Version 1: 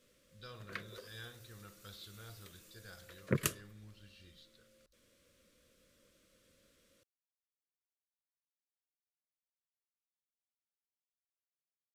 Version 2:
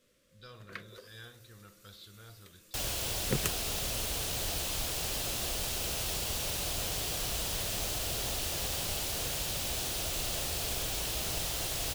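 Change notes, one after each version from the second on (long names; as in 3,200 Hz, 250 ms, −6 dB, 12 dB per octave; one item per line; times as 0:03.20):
second sound: unmuted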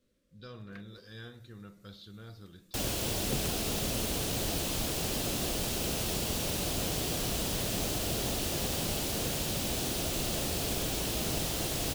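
first sound −11.5 dB
master: add parametric band 240 Hz +11.5 dB 1.9 octaves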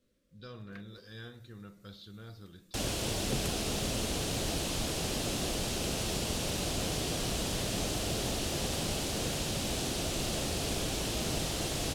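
second sound: add low-pass filter 9,900 Hz 12 dB per octave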